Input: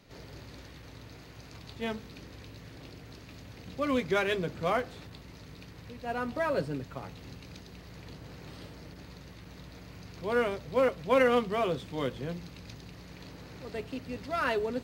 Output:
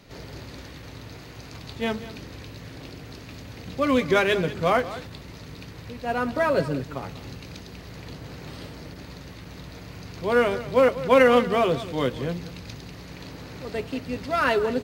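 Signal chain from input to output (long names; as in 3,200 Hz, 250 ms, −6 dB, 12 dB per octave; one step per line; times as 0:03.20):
single-tap delay 192 ms −15 dB
level +7.5 dB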